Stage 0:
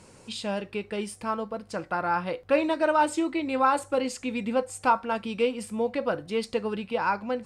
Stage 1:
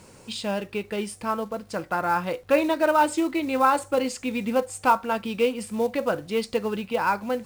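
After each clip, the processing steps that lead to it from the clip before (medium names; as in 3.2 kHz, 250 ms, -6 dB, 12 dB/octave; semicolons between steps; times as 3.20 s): companded quantiser 6-bit; trim +2.5 dB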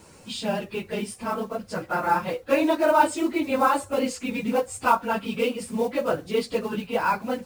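phase randomisation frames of 50 ms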